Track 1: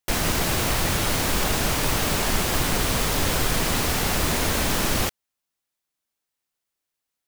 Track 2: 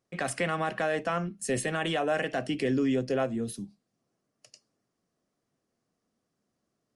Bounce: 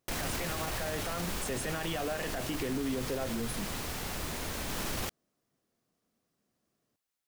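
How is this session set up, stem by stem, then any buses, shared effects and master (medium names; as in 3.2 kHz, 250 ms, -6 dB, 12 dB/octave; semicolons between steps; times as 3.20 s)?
-4.0 dB, 0.00 s, no send, auto duck -10 dB, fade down 1.75 s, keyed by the second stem
-1.0 dB, 0.00 s, no send, peak limiter -22 dBFS, peak gain reduction 4 dB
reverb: none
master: peak limiter -25 dBFS, peak gain reduction 9.5 dB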